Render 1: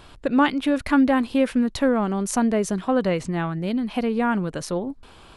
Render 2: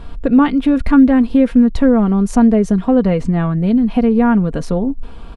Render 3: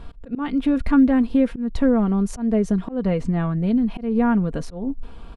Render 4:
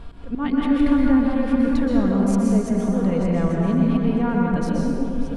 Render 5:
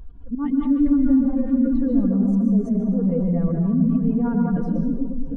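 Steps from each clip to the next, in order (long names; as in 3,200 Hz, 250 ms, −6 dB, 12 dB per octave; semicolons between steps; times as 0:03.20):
spectral tilt −3 dB per octave; comb filter 4.3 ms, depth 44%; in parallel at 0 dB: downward compressor, threshold −19 dBFS, peak gain reduction 12.5 dB; on the sum: level −1 dB
volume swells 191 ms; level −6 dB
delay that plays each chunk backwards 619 ms, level −11.5 dB; brickwall limiter −16 dBFS, peak gain reduction 9 dB; dense smooth reverb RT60 2.1 s, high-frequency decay 0.6×, pre-delay 110 ms, DRR −2.5 dB
expanding power law on the bin magnitudes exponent 1.7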